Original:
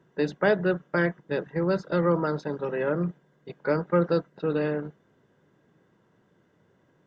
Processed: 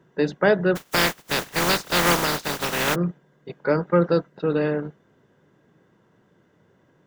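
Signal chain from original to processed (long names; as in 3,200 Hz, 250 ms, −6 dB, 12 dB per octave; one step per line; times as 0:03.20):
0:00.75–0:02.94: compressing power law on the bin magnitudes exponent 0.26
level +4 dB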